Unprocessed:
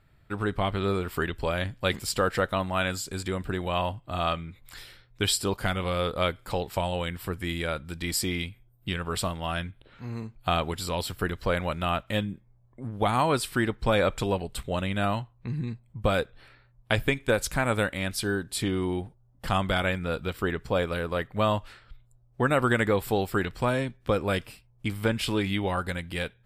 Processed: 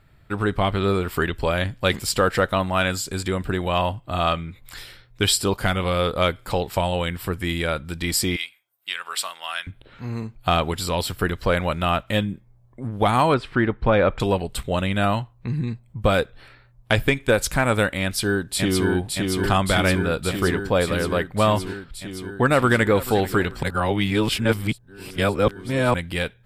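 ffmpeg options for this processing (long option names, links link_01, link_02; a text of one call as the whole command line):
ffmpeg -i in.wav -filter_complex "[0:a]asettb=1/sr,asplit=3[link_01][link_02][link_03];[link_01]atrim=end=8.364[link_04];[link_02]atrim=start=8.36:end=9.67,asetpts=PTS-STARTPTS,afade=type=in:duration=0.004:curve=qsin,afade=type=out:start_time=1.306:duration=0.004:curve=qsin,highpass=1300[link_05];[link_03]atrim=start=9.666[link_06];[link_04][link_05]acrossfade=duration=0.004:curve1=hsin:curve2=qsin[link_07];[link_07][link_06]acrossfade=duration=0.004:curve1=qsin:curve2=hsin,asettb=1/sr,asplit=3[link_08][link_09][link_10];[link_08]atrim=end=13.344[link_11];[link_09]atrim=start=13.34:end=14.2,asetpts=PTS-STARTPTS,afade=type=in:duration=0.004:curve=qsin,afade=type=out:start_time=0.856:duration=0.004:curve=qsin,lowpass=2200[link_12];[link_10]atrim=start=14.196[link_13];[link_11][link_12]acrossfade=duration=0.004:curve1=hsin:curve2=qsin[link_14];[link_14][link_13]acrossfade=duration=0.004:curve1=qsin:curve2=hsin,asplit=2[link_15][link_16];[link_16]afade=type=in:start_time=18.02:duration=0.01,afade=type=out:start_time=18.88:duration=0.01,aecho=0:1:570|1140|1710|2280|2850|3420|3990|4560|5130|5700|6270|6840:0.707946|0.566357|0.453085|0.362468|0.289975|0.23198|0.185584|0.148467|0.118774|0.0950189|0.0760151|0.0608121[link_17];[link_15][link_17]amix=inputs=2:normalize=0,asplit=2[link_18][link_19];[link_19]afade=type=in:start_time=22.46:duration=0.01,afade=type=out:start_time=23.02:duration=0.01,aecho=0:1:440|880|1320:0.149624|0.0448871|0.0134661[link_20];[link_18][link_20]amix=inputs=2:normalize=0,asplit=3[link_21][link_22][link_23];[link_21]atrim=end=23.632[link_24];[link_22]atrim=start=23.628:end=25.942,asetpts=PTS-STARTPTS,areverse[link_25];[link_23]atrim=start=25.938[link_26];[link_24][link_25]acrossfade=duration=0.004:curve1=hsin:curve2=hsin[link_27];[link_27][link_26]acrossfade=duration=0.004:curve1=hsin:curve2=hsin,acontrast=82,volume=-1dB" out.wav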